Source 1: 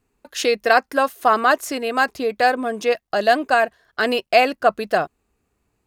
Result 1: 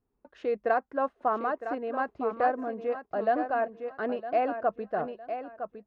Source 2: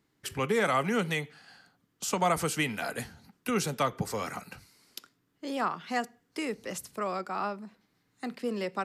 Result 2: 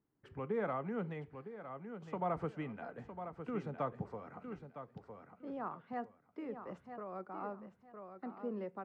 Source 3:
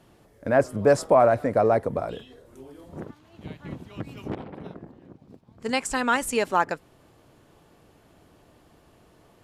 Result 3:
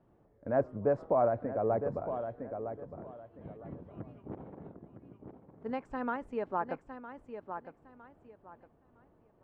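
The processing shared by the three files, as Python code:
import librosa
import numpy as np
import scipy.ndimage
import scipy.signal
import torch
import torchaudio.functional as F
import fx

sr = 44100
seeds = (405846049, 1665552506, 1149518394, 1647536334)

y = scipy.signal.sosfilt(scipy.signal.butter(2, 1100.0, 'lowpass', fs=sr, output='sos'), x)
y = fx.echo_feedback(y, sr, ms=959, feedback_pct=24, wet_db=-9.0)
y = fx.am_noise(y, sr, seeds[0], hz=5.7, depth_pct=60)
y = y * librosa.db_to_amplitude(-6.5)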